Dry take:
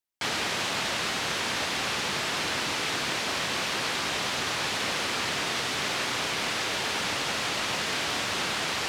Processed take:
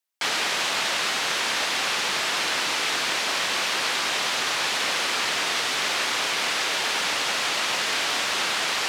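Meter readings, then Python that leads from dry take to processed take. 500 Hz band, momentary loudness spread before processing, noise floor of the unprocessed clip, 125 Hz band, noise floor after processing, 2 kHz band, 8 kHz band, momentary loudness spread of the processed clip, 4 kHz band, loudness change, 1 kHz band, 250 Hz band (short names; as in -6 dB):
+1.5 dB, 0 LU, -30 dBFS, -8.0 dB, -26 dBFS, +4.5 dB, +5.0 dB, 0 LU, +5.0 dB, +4.5 dB, +3.5 dB, -2.5 dB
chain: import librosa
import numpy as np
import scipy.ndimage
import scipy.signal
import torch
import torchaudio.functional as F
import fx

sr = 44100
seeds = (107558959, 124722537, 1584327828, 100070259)

y = fx.highpass(x, sr, hz=590.0, slope=6)
y = y * librosa.db_to_amplitude(5.0)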